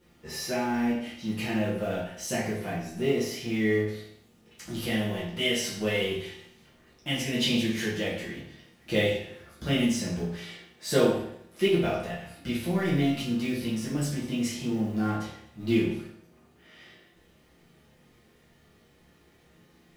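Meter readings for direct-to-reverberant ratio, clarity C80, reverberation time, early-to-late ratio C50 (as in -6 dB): -8.0 dB, 6.0 dB, 0.70 s, 2.5 dB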